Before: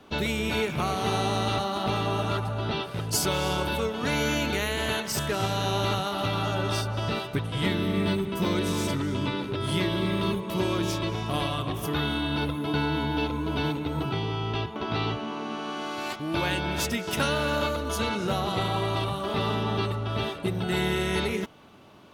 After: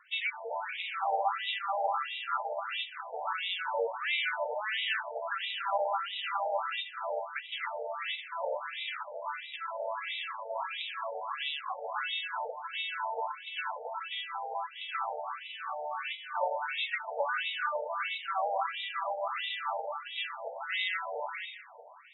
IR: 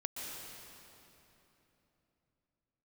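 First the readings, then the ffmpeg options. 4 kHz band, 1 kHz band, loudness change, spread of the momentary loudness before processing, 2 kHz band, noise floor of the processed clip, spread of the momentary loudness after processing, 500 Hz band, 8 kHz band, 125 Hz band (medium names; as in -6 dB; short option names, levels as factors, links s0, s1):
-5.5 dB, -2.0 dB, -6.5 dB, 4 LU, -2.5 dB, -47 dBFS, 7 LU, -7.5 dB, under -40 dB, under -40 dB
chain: -filter_complex "[0:a]afreqshift=13,aeval=exprs='0.282*(cos(1*acos(clip(val(0)/0.282,-1,1)))-cos(1*PI/2))+0.0126*(cos(4*acos(clip(val(0)/0.282,-1,1)))-cos(4*PI/2))+0.002*(cos(5*acos(clip(val(0)/0.282,-1,1)))-cos(5*PI/2))+0.002*(cos(7*acos(clip(val(0)/0.282,-1,1)))-cos(7*PI/2))':c=same,asplit=2[s0][s1];[1:a]atrim=start_sample=2205[s2];[s1][s2]afir=irnorm=-1:irlink=0,volume=0.355[s3];[s0][s3]amix=inputs=2:normalize=0,afftfilt=real='re*between(b*sr/1024,630*pow(2800/630,0.5+0.5*sin(2*PI*1.5*pts/sr))/1.41,630*pow(2800/630,0.5+0.5*sin(2*PI*1.5*pts/sr))*1.41)':imag='im*between(b*sr/1024,630*pow(2800/630,0.5+0.5*sin(2*PI*1.5*pts/sr))/1.41,630*pow(2800/630,0.5+0.5*sin(2*PI*1.5*pts/sr))*1.41)':win_size=1024:overlap=0.75"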